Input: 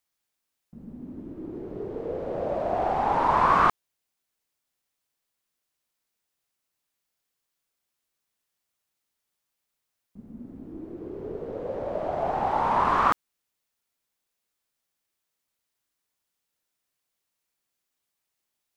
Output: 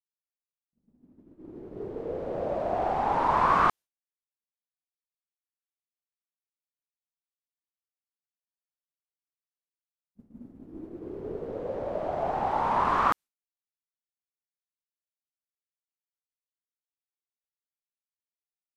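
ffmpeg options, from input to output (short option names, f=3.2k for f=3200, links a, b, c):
-af "aresample=32000,aresample=44100,dynaudnorm=f=600:g=5:m=8.5dB,agate=range=-33dB:threshold=-27dB:ratio=3:detection=peak,volume=-8.5dB"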